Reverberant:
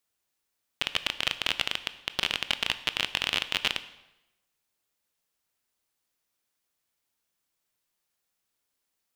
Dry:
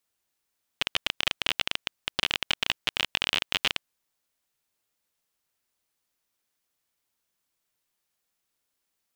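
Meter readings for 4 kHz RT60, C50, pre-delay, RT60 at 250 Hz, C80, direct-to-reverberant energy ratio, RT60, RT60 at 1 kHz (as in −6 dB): 0.80 s, 14.5 dB, 17 ms, 1.0 s, 16.5 dB, 12.0 dB, 0.95 s, 0.90 s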